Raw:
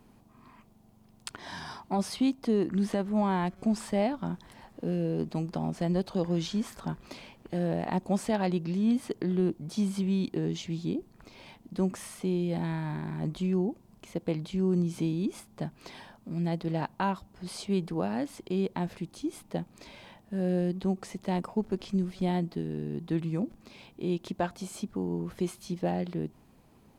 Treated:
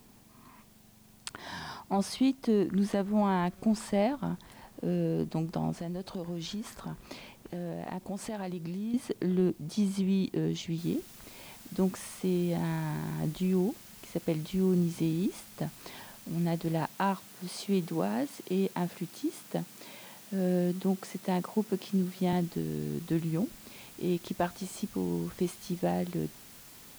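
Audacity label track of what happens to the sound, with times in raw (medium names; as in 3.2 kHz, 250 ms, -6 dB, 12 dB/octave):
5.760000	8.940000	compression 4:1, threshold -34 dBFS
10.780000	10.780000	noise floor step -63 dB -52 dB
16.890000	22.330000	high-pass 130 Hz 24 dB/octave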